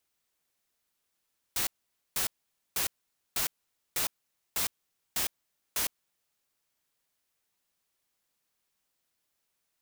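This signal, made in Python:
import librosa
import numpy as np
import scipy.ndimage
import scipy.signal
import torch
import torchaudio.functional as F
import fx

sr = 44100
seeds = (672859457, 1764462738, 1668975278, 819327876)

y = fx.noise_burst(sr, seeds[0], colour='white', on_s=0.11, off_s=0.49, bursts=8, level_db=-29.5)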